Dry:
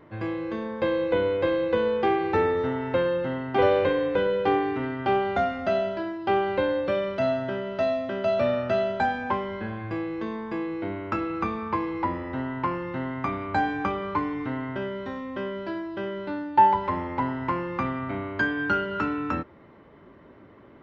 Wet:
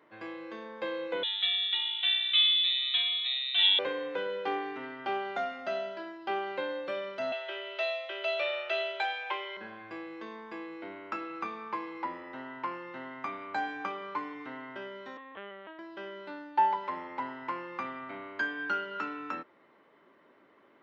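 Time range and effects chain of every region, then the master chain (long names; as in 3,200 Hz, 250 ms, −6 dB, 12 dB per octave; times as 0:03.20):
0:01.23–0:03.79: comb filter 7 ms, depth 62% + voice inversion scrambler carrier 3,900 Hz
0:07.32–0:09.57: Chebyshev high-pass filter 300 Hz, order 10 + flat-topped bell 2,900 Hz +11 dB 1.1 octaves
0:15.17–0:15.79: low-shelf EQ 140 Hz −10 dB + linear-prediction vocoder at 8 kHz pitch kept
whole clip: high-pass filter 270 Hz 12 dB per octave; tilt shelving filter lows −4 dB, about 870 Hz; level −8 dB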